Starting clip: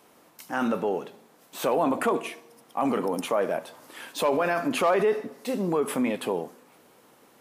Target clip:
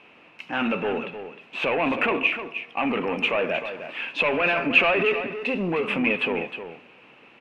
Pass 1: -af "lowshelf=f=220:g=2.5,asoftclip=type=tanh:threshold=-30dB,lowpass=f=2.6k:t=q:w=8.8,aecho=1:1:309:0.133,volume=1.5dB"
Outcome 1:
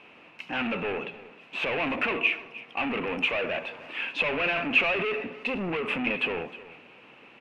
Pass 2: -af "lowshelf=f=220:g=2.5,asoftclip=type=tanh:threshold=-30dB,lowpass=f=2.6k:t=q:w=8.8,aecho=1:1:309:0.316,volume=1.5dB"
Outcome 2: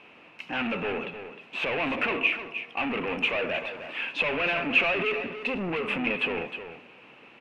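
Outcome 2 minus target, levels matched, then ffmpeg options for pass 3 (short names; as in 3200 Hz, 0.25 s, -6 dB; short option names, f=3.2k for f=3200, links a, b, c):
soft clip: distortion +7 dB
-af "lowshelf=f=220:g=2.5,asoftclip=type=tanh:threshold=-21dB,lowpass=f=2.6k:t=q:w=8.8,aecho=1:1:309:0.316,volume=1.5dB"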